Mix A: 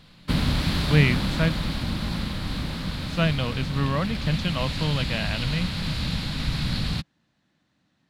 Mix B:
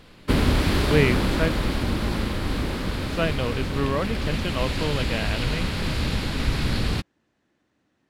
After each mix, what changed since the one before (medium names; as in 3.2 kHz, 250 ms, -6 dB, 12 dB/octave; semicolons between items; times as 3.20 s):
background +4.5 dB; master: add fifteen-band graphic EQ 160 Hz -8 dB, 400 Hz +9 dB, 4 kHz -7 dB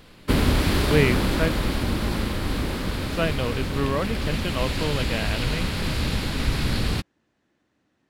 background: add treble shelf 10 kHz +7 dB